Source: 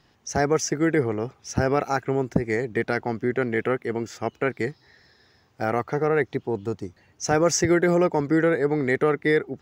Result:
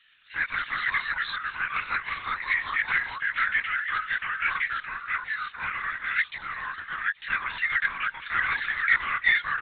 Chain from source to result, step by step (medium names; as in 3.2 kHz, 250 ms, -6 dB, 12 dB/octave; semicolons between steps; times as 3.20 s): inverse Chebyshev high-pass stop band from 390 Hz, stop band 70 dB; ever faster or slower copies 127 ms, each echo -2 st, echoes 3; LPC vocoder at 8 kHz whisper; delay 826 ms -22.5 dB; 1.76–2.29 s: three bands compressed up and down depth 70%; trim +8 dB